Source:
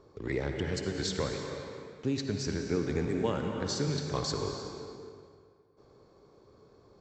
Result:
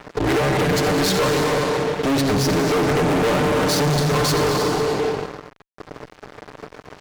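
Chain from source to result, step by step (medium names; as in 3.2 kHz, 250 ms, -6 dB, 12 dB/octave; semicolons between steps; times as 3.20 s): comb filter that takes the minimum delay 6.7 ms; high-pass 140 Hz 6 dB/octave; treble shelf 2.7 kHz -9 dB; in parallel at +2 dB: compression, threshold -47 dBFS, peak gain reduction 17.5 dB; on the sum: fuzz box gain 43 dB, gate -52 dBFS; trim -3.5 dB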